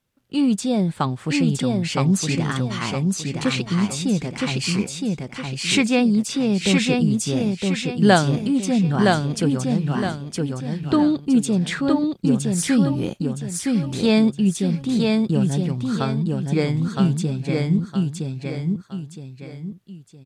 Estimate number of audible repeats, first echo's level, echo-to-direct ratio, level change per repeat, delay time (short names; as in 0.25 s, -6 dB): 3, -3.0 dB, -2.5 dB, -9.0 dB, 0.965 s